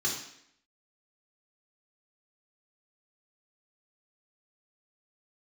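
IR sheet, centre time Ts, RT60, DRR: 37 ms, 0.70 s, -4.0 dB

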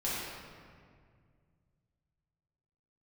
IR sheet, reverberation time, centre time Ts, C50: 2.0 s, 0.13 s, -3.0 dB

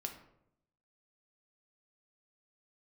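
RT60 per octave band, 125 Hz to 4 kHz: 1.0, 0.90, 0.85, 0.70, 0.55, 0.45 s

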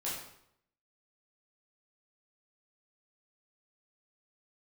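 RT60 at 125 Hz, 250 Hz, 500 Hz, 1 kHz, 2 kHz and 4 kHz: 0.80, 0.75, 0.75, 0.70, 0.65, 0.60 s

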